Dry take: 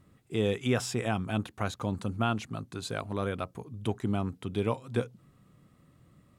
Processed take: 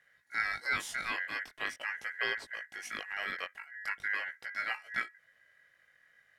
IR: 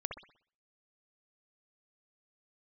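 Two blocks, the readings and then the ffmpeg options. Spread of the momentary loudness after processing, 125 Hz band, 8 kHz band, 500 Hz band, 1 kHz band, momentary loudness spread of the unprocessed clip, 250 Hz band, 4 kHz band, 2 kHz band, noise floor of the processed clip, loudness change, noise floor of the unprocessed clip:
8 LU, under -25 dB, -5.5 dB, -17.0 dB, -4.5 dB, 8 LU, -24.0 dB, -1.5 dB, +9.0 dB, -69 dBFS, -3.0 dB, -64 dBFS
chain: -af "flanger=delay=16.5:depth=5.4:speed=0.43,aeval=exprs='val(0)*sin(2*PI*1800*n/s)':c=same"

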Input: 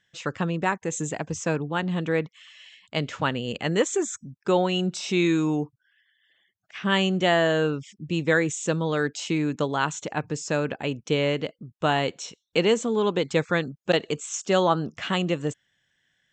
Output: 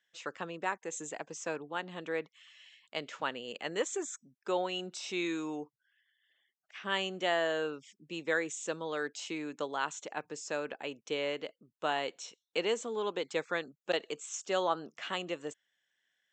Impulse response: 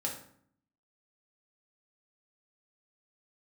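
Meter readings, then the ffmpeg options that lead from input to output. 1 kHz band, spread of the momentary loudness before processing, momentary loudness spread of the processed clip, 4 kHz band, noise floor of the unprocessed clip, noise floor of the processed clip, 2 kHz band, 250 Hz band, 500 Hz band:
-8.5 dB, 9 LU, 10 LU, -8.5 dB, -74 dBFS, under -85 dBFS, -8.5 dB, -15.0 dB, -10.0 dB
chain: -af "highpass=380,volume=0.376"

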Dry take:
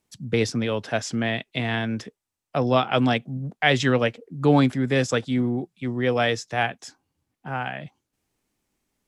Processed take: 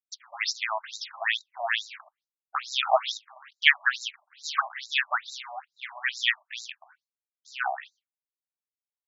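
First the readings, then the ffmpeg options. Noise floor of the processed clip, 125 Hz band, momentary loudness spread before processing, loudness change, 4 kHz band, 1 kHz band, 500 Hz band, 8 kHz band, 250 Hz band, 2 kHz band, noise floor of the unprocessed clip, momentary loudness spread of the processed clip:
under -85 dBFS, under -40 dB, 11 LU, -4.0 dB, +1.5 dB, -3.0 dB, -12.0 dB, -3.0 dB, under -40 dB, +1.0 dB, -84 dBFS, 17 LU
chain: -af "acrusher=bits=4:mode=log:mix=0:aa=0.000001,agate=range=0.0224:threshold=0.00316:ratio=3:detection=peak,afftfilt=real='re*between(b*sr/1024,820*pow(5400/820,0.5+0.5*sin(2*PI*2.3*pts/sr))/1.41,820*pow(5400/820,0.5+0.5*sin(2*PI*2.3*pts/sr))*1.41)':imag='im*between(b*sr/1024,820*pow(5400/820,0.5+0.5*sin(2*PI*2.3*pts/sr))/1.41,820*pow(5400/820,0.5+0.5*sin(2*PI*2.3*pts/sr))*1.41)':win_size=1024:overlap=0.75,volume=2.11"

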